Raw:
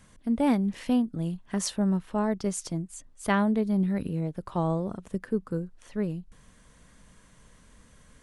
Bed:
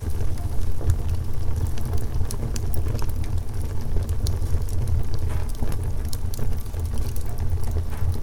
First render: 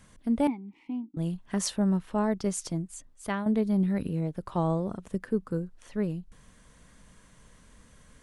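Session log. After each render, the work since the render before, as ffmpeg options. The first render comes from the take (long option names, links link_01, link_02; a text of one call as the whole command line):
ffmpeg -i in.wav -filter_complex "[0:a]asettb=1/sr,asplit=3[link_01][link_02][link_03];[link_01]atrim=end=0.474[link_04];[link_02]atrim=start=0.47:end=1.17,asetpts=PTS-STARTPTS,afade=type=in:duration=0.004:curve=qsin,afade=type=out:start_time=0.696:duration=0.004:curve=qsin,asplit=3[link_05][link_06][link_07];[link_05]bandpass=frequency=300:width_type=q:width=8,volume=0dB[link_08];[link_06]bandpass=frequency=870:width_type=q:width=8,volume=-6dB[link_09];[link_07]bandpass=frequency=2240:width_type=q:width=8,volume=-9dB[link_10];[link_08][link_09][link_10]amix=inputs=3:normalize=0[link_11];[link_03]atrim=start=1.166[link_12];[link_04][link_11]acrossfade=duration=0.004:curve1=hsin:curve2=qsin[link_13];[link_13][link_12]acrossfade=duration=0.004:curve1=qsin:curve2=hsin,asplit=2[link_14][link_15];[link_14]atrim=end=3.46,asetpts=PTS-STARTPTS,afade=type=out:start_time=2.93:duration=0.53:silence=0.298538[link_16];[link_15]atrim=start=3.46,asetpts=PTS-STARTPTS,afade=type=in:duration=0.004:curve=hsin:silence=0.298538[link_17];[link_16][link_17]concat=n=2:v=0:a=1" out.wav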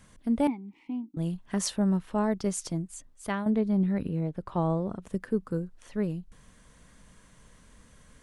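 ffmpeg -i in.wav -filter_complex "[0:a]asettb=1/sr,asplit=3[link_01][link_02][link_03];[link_01]atrim=end=3.504[link_04];[link_02]atrim=start=3.5:end=5.02,asetpts=PTS-STARTPTS,afade=type=in:duration=0.004:curve=qsin,afade=type=out:start_time=1.516:duration=0.004:curve=qsin,highshelf=frequency=5100:gain=-11[link_05];[link_03]atrim=start=5.016[link_06];[link_04][link_05]acrossfade=duration=0.004:curve1=hsin:curve2=qsin[link_07];[link_07][link_06]acrossfade=duration=0.004:curve1=qsin:curve2=hsin" out.wav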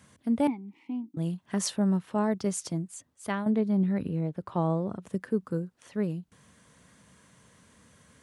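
ffmpeg -i in.wav -af "highpass=frequency=82:width=0.5412,highpass=frequency=82:width=1.3066" out.wav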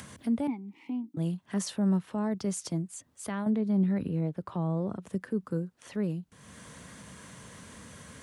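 ffmpeg -i in.wav -filter_complex "[0:a]acrossover=split=220[link_01][link_02];[link_02]alimiter=level_in=2.5dB:limit=-24dB:level=0:latency=1:release=38,volume=-2.5dB[link_03];[link_01][link_03]amix=inputs=2:normalize=0,acompressor=mode=upward:threshold=-37dB:ratio=2.5" out.wav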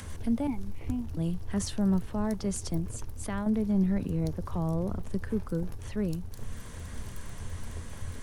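ffmpeg -i in.wav -i bed.wav -filter_complex "[1:a]volume=-15dB[link_01];[0:a][link_01]amix=inputs=2:normalize=0" out.wav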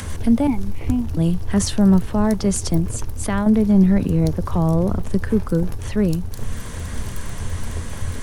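ffmpeg -i in.wav -af "volume=12dB" out.wav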